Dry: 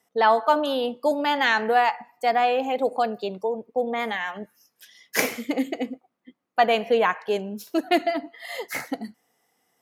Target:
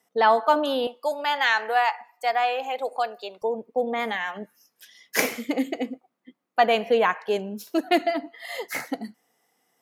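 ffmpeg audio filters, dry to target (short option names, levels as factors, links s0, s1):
-af "asetnsamples=n=441:p=0,asendcmd='0.87 highpass f 660;3.42 highpass f 130',highpass=110"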